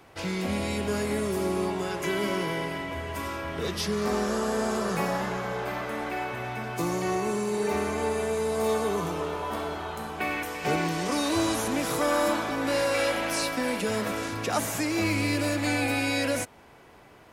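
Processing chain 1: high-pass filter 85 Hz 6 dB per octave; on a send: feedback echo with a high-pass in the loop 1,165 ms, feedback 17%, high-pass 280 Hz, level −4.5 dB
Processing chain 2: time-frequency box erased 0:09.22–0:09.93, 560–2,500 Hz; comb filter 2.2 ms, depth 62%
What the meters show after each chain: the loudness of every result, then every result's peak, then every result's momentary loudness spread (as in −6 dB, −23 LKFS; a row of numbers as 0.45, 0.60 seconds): −27.5, −27.0 LKFS; −13.0, −12.5 dBFS; 6, 8 LU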